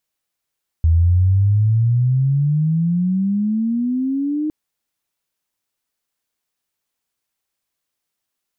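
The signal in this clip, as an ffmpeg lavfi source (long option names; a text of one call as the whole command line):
ffmpeg -f lavfi -i "aevalsrc='pow(10,(-10-8*t/3.66)/20)*sin(2*PI*79.8*3.66/(23.5*log(2)/12)*(exp(23.5*log(2)/12*t/3.66)-1))':duration=3.66:sample_rate=44100" out.wav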